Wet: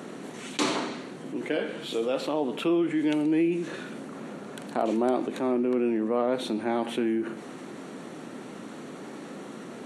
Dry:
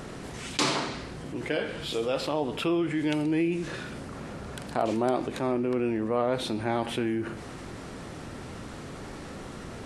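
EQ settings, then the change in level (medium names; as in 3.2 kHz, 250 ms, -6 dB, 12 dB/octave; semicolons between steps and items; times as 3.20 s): high-pass 210 Hz 24 dB/octave; bass shelf 340 Hz +9 dB; band-stop 5 kHz, Q 6.1; -2.0 dB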